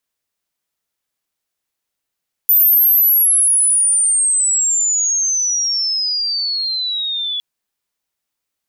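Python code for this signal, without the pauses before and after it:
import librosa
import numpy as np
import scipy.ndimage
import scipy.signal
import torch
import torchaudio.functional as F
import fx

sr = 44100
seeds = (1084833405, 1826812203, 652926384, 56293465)

y = fx.chirp(sr, length_s=4.91, from_hz=14000.0, to_hz=3400.0, law='logarithmic', from_db=-8.0, to_db=-19.0)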